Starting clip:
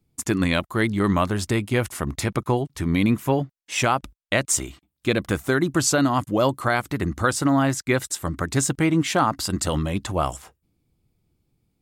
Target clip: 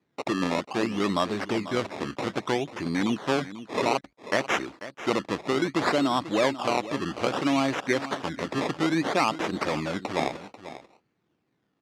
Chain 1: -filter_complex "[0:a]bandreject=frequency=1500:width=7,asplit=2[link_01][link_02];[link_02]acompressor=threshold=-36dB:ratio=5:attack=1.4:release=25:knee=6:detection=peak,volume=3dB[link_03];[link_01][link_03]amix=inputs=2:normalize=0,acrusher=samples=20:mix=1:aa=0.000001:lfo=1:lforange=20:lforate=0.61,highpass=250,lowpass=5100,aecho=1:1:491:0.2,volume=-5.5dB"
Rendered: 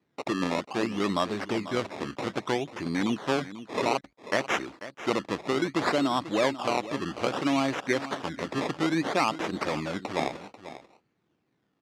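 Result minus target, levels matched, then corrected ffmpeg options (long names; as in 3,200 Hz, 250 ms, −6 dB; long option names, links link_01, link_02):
downward compressor: peak gain reduction +7 dB
-filter_complex "[0:a]bandreject=frequency=1500:width=7,asplit=2[link_01][link_02];[link_02]acompressor=threshold=-27.5dB:ratio=5:attack=1.4:release=25:knee=6:detection=peak,volume=3dB[link_03];[link_01][link_03]amix=inputs=2:normalize=0,acrusher=samples=20:mix=1:aa=0.000001:lfo=1:lforange=20:lforate=0.61,highpass=250,lowpass=5100,aecho=1:1:491:0.2,volume=-5.5dB"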